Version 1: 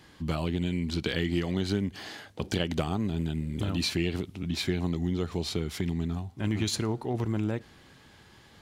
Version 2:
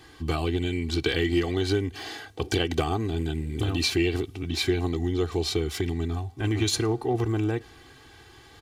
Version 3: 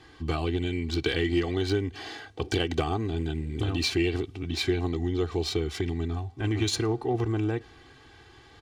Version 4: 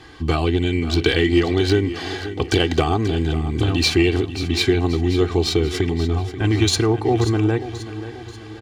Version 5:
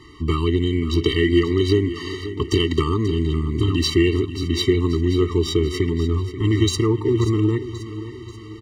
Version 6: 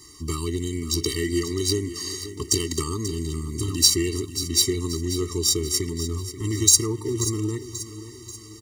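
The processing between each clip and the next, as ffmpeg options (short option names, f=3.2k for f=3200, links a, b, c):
-af "aecho=1:1:2.6:0.79,volume=2.5dB"
-af "adynamicsmooth=sensitivity=3:basefreq=7.3k,volume=-1.5dB"
-af "aecho=1:1:535|1070|1605|2140|2675:0.224|0.105|0.0495|0.0232|0.0109,volume=9dB"
-af "afftfilt=real='re*eq(mod(floor(b*sr/1024/450),2),0)':imag='im*eq(mod(floor(b*sr/1024/450),2),0)':win_size=1024:overlap=0.75"
-af "aexciter=amount=13.4:drive=6.7:freq=4.8k,volume=-8dB"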